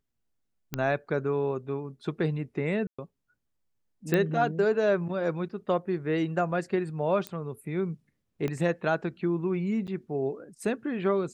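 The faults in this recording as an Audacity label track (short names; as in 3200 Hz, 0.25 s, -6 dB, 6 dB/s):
0.740000	0.740000	pop -15 dBFS
2.870000	2.980000	gap 0.115 s
4.140000	4.140000	pop -12 dBFS
7.270000	7.270000	pop -18 dBFS
8.480000	8.480000	pop -19 dBFS
9.870000	9.880000	gap 7.5 ms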